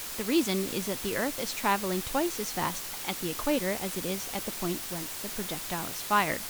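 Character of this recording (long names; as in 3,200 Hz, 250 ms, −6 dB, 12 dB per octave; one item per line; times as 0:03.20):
a quantiser's noise floor 6 bits, dither triangular
Ogg Vorbis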